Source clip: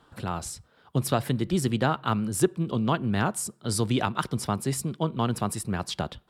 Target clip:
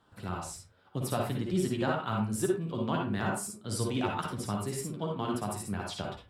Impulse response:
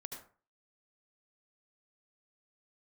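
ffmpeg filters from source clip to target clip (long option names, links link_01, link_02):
-filter_complex "[0:a]flanger=delay=9.6:depth=1.8:regen=39:speed=0.85:shape=triangular[link_01];[1:a]atrim=start_sample=2205,asetrate=61740,aresample=44100[link_02];[link_01][link_02]afir=irnorm=-1:irlink=0,volume=4.5dB"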